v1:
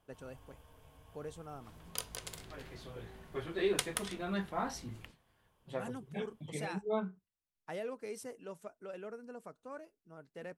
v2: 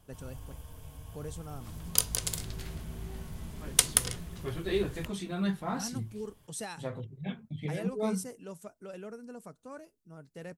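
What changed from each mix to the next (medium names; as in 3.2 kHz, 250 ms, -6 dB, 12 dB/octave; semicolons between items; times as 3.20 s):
second voice: entry +1.10 s; background +5.0 dB; master: add tone controls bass +10 dB, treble +10 dB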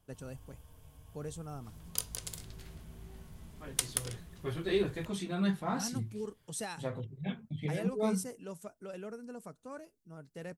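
background -9.0 dB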